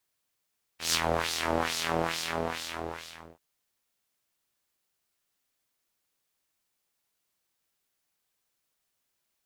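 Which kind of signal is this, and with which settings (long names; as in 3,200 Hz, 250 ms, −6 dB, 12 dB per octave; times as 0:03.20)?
subtractive patch with filter wobble E2, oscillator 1 saw, noise −10.5 dB, filter bandpass, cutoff 1,500 Hz, Q 1.4, filter envelope 0.5 octaves, attack 150 ms, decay 0.06 s, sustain −7 dB, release 1.45 s, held 1.14 s, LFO 2.3 Hz, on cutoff 1.5 octaves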